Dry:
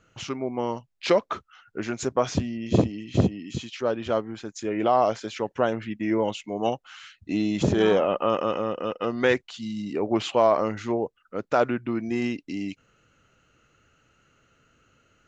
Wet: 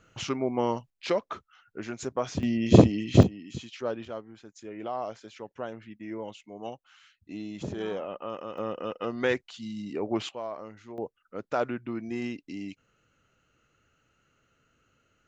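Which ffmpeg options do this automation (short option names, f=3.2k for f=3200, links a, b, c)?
-af "asetnsamples=n=441:p=0,asendcmd='0.9 volume volume -6.5dB;2.43 volume volume 5dB;3.23 volume volume -6dB;4.05 volume volume -13dB;8.58 volume volume -5dB;10.29 volume volume -17dB;10.98 volume volume -6.5dB',volume=1dB"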